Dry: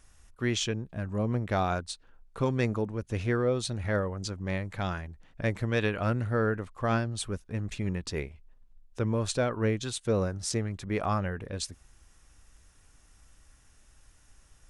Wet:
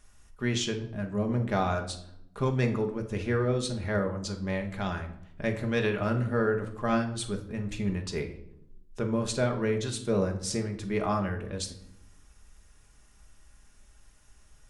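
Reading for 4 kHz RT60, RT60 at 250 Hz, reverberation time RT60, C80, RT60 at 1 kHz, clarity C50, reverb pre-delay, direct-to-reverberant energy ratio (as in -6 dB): 0.50 s, 1.2 s, 0.80 s, 14.0 dB, 0.65 s, 10.5 dB, 5 ms, 3.0 dB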